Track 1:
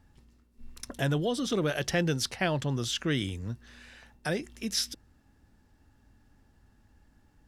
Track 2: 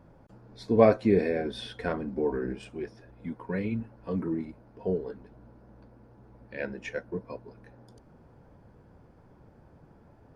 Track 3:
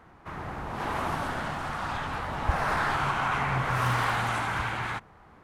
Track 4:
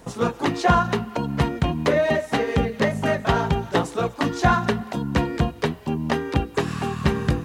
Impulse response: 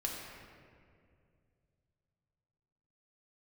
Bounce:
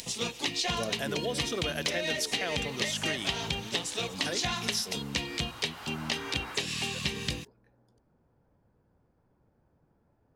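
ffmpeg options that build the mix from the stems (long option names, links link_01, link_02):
-filter_complex "[0:a]bass=frequency=250:gain=-15,treble=frequency=4000:gain=5,volume=-0.5dB[link_01];[1:a]volume=-13.5dB,asplit=2[link_02][link_03];[2:a]asplit=2[link_04][link_05];[link_05]highpass=frequency=720:poles=1,volume=25dB,asoftclip=type=tanh:threshold=-13dB[link_06];[link_04][link_06]amix=inputs=2:normalize=0,lowpass=frequency=1300:poles=1,volume=-6dB,adelay=1650,volume=-16dB[link_07];[3:a]aemphasis=mode=reproduction:type=50kf,acompressor=mode=upward:threshold=-37dB:ratio=2.5,aexciter=amount=9.2:drive=8.4:freq=2200,volume=-11.5dB[link_08];[link_03]apad=whole_len=312473[link_09];[link_07][link_09]sidechaincompress=threshold=-59dB:ratio=3:attack=16:release=1090[link_10];[link_01][link_02][link_10][link_08]amix=inputs=4:normalize=0,acompressor=threshold=-27dB:ratio=6"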